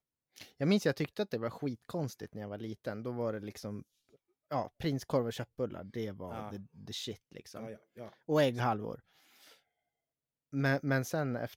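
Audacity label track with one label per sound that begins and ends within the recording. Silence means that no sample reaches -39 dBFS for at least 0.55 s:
4.510000	8.950000	sound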